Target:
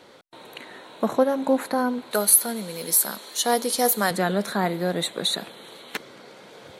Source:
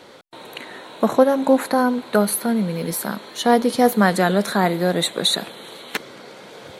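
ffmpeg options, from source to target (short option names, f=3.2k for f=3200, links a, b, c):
-filter_complex "[0:a]asettb=1/sr,asplit=3[a][b][c];[a]atrim=end=2.114[d];[b]atrim=start=2.11:end=4.11,asetpts=PTS-STARTPTS,afade=t=in:d=0.004:c=qsin,afade=t=out:st=1.996:d=0.004:c=qsin,bass=f=250:g=-11,treble=f=4k:g=14[e];[c]atrim=start=4.106[f];[d][e]acrossfade=d=0.004:c1=hsin:c2=qsin[g];[g][f]acrossfade=d=0.004:c1=qsin:c2=hsin,volume=-5.5dB"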